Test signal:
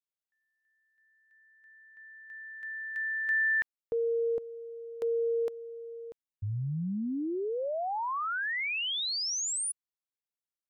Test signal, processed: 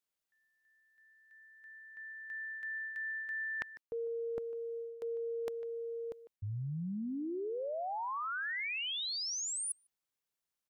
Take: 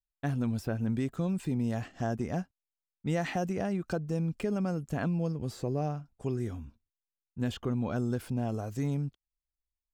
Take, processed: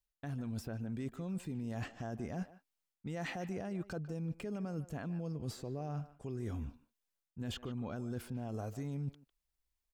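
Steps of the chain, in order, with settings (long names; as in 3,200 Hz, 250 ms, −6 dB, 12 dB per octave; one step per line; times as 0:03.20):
brickwall limiter −24.5 dBFS
reversed playback
downward compressor 6 to 1, threshold −42 dBFS
reversed playback
far-end echo of a speakerphone 150 ms, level −14 dB
level +4.5 dB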